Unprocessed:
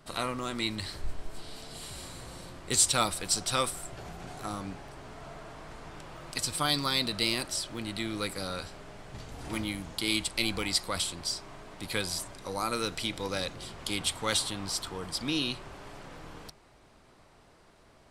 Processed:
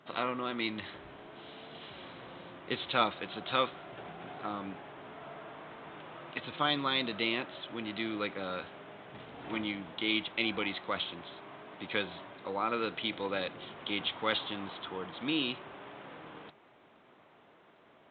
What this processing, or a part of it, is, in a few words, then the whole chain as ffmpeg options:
Bluetooth headset: -af "highpass=200,aresample=8000,aresample=44100" -ar 16000 -c:a sbc -b:a 64k

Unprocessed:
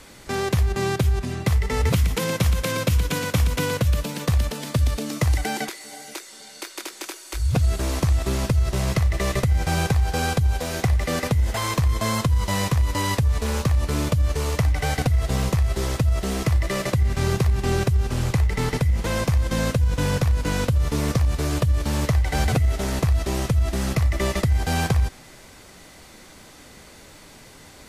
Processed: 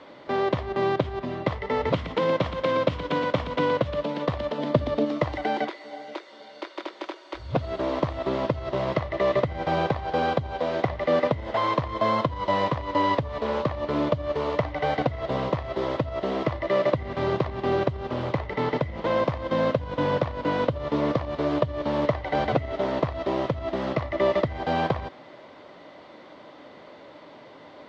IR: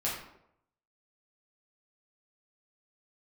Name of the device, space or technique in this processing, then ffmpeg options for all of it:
kitchen radio: -filter_complex "[0:a]asettb=1/sr,asplit=3[a][b][c];[a]atrim=end=4.584[d];[b]atrim=start=4.58:end=5.05,asetpts=PTS-STARTPTS,afade=t=in:d=0.004:c=qsin,afade=t=out:st=0.466:d=0.004:c=qsin,equalizer=f=230:t=o:w=3:g=6[e];[c]atrim=start=5.046[f];[d][e]acrossfade=d=0.004:c1=hsin:c2=qsin[g];[g][f]acrossfade=d=0.004:c1=qsin:c2=hsin,highpass=190,equalizer=f=200:t=q:w=4:g=-4,equalizer=f=300:t=q:w=4:g=4,equalizer=f=590:t=q:w=4:g=9,equalizer=f=1k:t=q:w=4:g=5,equalizer=f=1.6k:t=q:w=4:g=-4,equalizer=f=2.5k:t=q:w=4:g=-7,lowpass=f=3.4k:w=0.5412,lowpass=f=3.4k:w=1.3066"

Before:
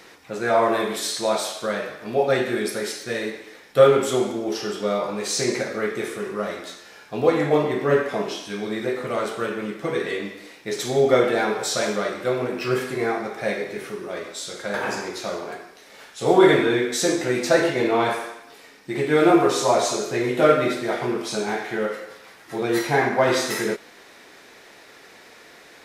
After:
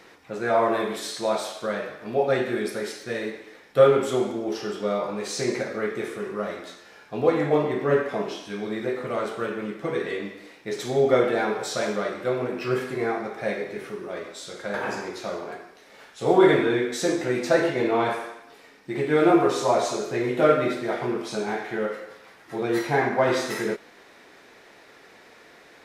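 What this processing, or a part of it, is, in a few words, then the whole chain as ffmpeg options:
behind a face mask: -af "highshelf=f=3.5k:g=-7,volume=-2dB"

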